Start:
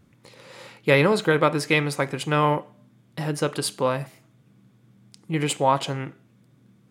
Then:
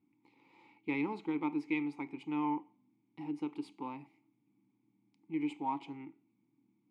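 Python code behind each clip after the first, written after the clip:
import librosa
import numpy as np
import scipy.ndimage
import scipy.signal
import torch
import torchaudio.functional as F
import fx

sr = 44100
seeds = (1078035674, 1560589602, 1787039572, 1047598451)

y = fx.cheby_harmonics(x, sr, harmonics=(8,), levels_db=(-32,), full_scale_db=-5.5)
y = fx.vowel_filter(y, sr, vowel='u')
y = y * librosa.db_to_amplitude(-4.0)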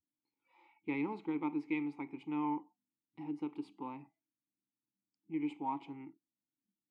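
y = fx.noise_reduce_blind(x, sr, reduce_db=23)
y = fx.high_shelf(y, sr, hz=3900.0, db=-9.0)
y = y * librosa.db_to_amplitude(-1.5)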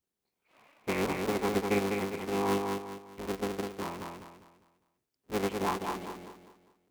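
y = fx.cycle_switch(x, sr, every=3, mode='inverted')
y = fx.echo_feedback(y, sr, ms=201, feedback_pct=36, wet_db=-4.0)
y = y * librosa.db_to_amplitude(5.0)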